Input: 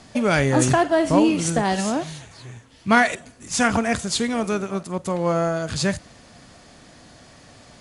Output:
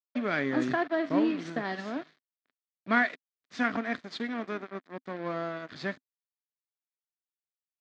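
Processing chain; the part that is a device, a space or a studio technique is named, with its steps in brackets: blown loudspeaker (crossover distortion -30.5 dBFS; cabinet simulation 250–3900 Hz, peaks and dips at 260 Hz +6 dB, 510 Hz -5 dB, 870 Hz -8 dB, 1.8 kHz +4 dB, 2.8 kHz -7 dB); trim -7 dB

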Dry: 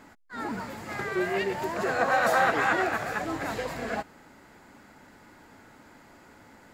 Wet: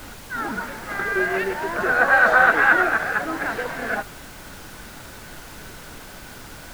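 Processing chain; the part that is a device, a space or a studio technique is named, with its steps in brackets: horn gramophone (band-pass 180–3600 Hz; peaking EQ 1.5 kHz +11 dB 0.33 oct; wow and flutter; pink noise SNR 17 dB); trim +3.5 dB

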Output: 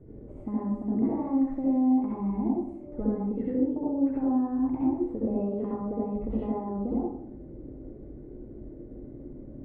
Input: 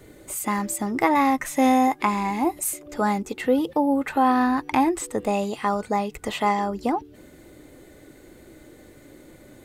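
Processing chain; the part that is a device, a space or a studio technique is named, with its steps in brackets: television next door (compression 5:1, threshold -28 dBFS, peak gain reduction 12.5 dB; low-pass 340 Hz 12 dB/octave; reverberation RT60 0.65 s, pre-delay 58 ms, DRR -6.5 dB)

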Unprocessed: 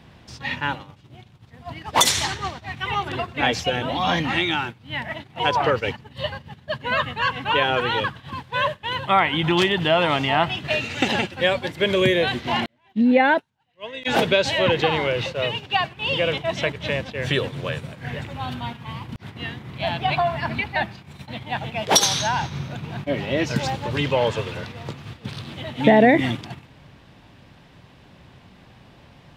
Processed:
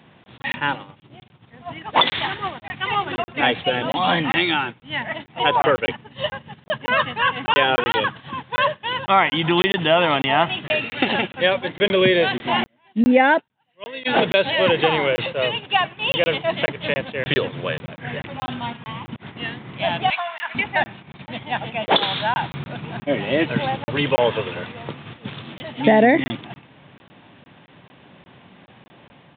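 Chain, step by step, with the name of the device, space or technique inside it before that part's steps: call with lost packets (high-pass 160 Hz 12 dB/octave; resampled via 8 kHz; level rider gain up to 3.5 dB; lost packets of 20 ms random); 20.10–20.55 s: high-pass 1.3 kHz 12 dB/octave

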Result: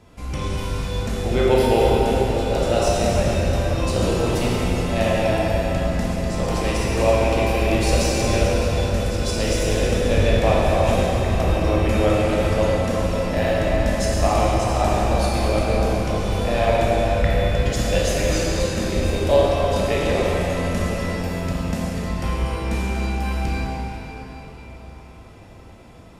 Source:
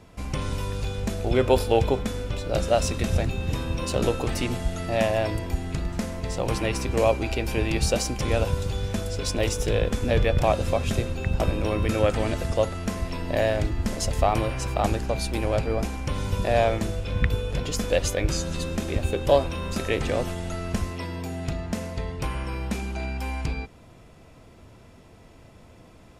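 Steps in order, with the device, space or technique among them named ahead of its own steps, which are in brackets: cathedral (reverberation RT60 4.9 s, pre-delay 13 ms, DRR -6.5 dB); 20.40–22.09 s: treble shelf 11 kHz +4 dB; trim -2 dB

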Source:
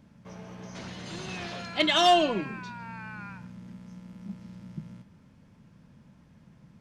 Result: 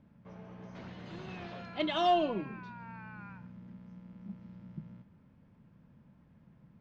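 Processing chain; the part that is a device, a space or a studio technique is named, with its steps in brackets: phone in a pocket (low-pass 3.9 kHz 12 dB/octave; treble shelf 2.5 kHz -8.5 dB); dynamic bell 1.8 kHz, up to -5 dB, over -46 dBFS, Q 1.9; trim -5 dB

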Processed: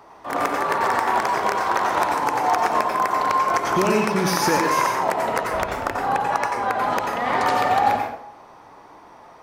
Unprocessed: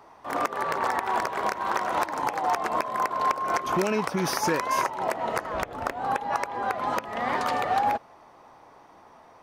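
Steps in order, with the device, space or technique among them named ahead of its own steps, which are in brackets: bathroom (reverberation RT60 0.55 s, pre-delay 84 ms, DRR 1.5 dB); trim +4 dB

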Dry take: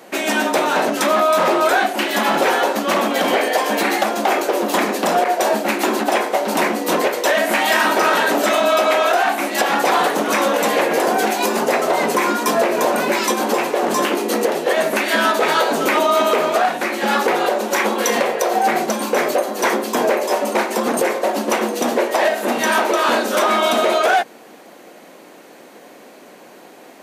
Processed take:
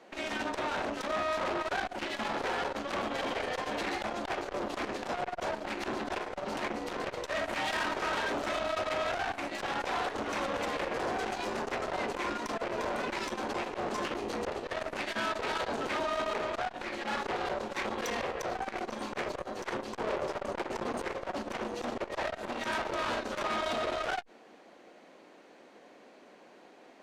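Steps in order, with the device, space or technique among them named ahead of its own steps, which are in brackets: 19.91–20.86 s: dynamic bell 420 Hz, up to +6 dB, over -28 dBFS, Q 0.75; valve radio (band-pass 140–5200 Hz; valve stage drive 18 dB, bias 0.75; transformer saturation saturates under 490 Hz); trim -8.5 dB

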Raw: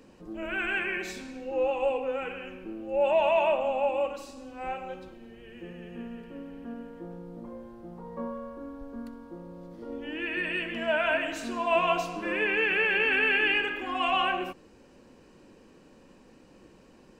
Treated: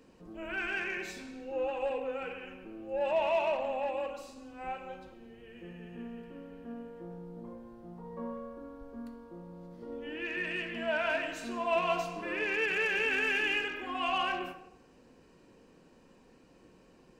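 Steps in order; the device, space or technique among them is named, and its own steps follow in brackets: saturated reverb return (on a send at -5.5 dB: reverberation RT60 0.80 s, pre-delay 3 ms + saturation -26.5 dBFS, distortion -9 dB); on the sum: trim -5.5 dB

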